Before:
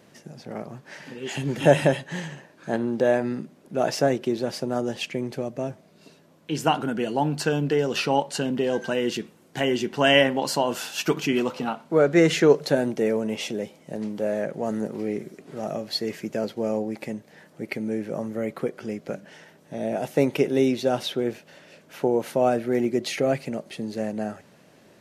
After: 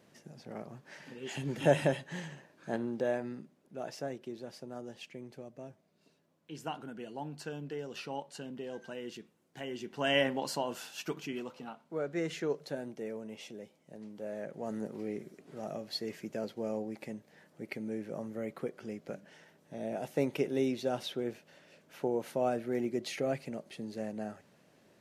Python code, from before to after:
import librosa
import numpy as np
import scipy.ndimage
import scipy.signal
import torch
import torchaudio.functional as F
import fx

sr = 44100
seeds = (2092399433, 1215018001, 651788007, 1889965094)

y = fx.gain(x, sr, db=fx.line((2.75, -9.0), (3.88, -17.5), (9.67, -17.5), (10.29, -9.0), (11.51, -17.0), (14.04, -17.0), (14.77, -10.0)))